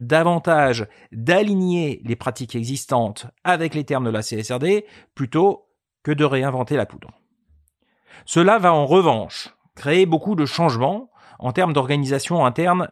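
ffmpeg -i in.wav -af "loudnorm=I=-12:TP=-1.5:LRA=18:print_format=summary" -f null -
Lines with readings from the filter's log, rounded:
Input Integrated:    -19.7 LUFS
Input True Peak:      -2.4 dBTP
Input LRA:             3.3 LU
Input Threshold:     -30.4 LUFS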